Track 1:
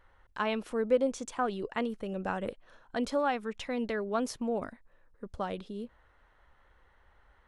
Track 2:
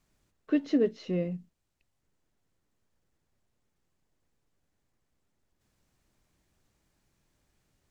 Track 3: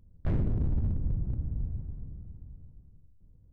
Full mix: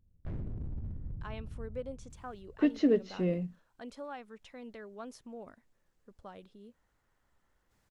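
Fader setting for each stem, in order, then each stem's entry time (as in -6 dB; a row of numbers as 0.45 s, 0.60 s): -14.0 dB, -0.5 dB, -11.0 dB; 0.85 s, 2.10 s, 0.00 s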